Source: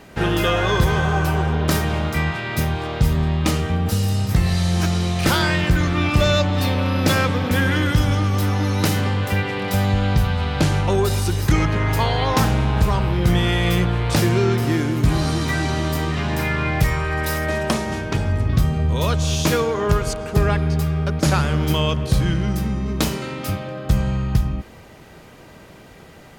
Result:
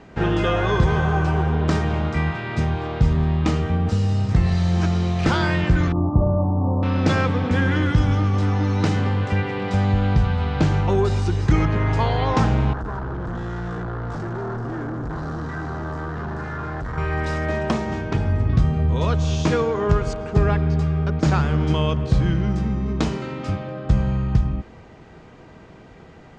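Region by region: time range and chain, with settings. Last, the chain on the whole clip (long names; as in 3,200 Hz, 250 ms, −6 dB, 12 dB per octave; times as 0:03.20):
0:05.92–0:06.83: Butterworth low-pass 1,100 Hz 72 dB per octave + notch filter 460 Hz, Q 14
0:12.73–0:16.98: gain into a clipping stage and back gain 26.5 dB + high shelf with overshoot 1,900 Hz −7 dB, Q 3
whole clip: Butterworth low-pass 7,700 Hz 36 dB per octave; high-shelf EQ 2,500 Hz −11 dB; notch filter 570 Hz, Q 12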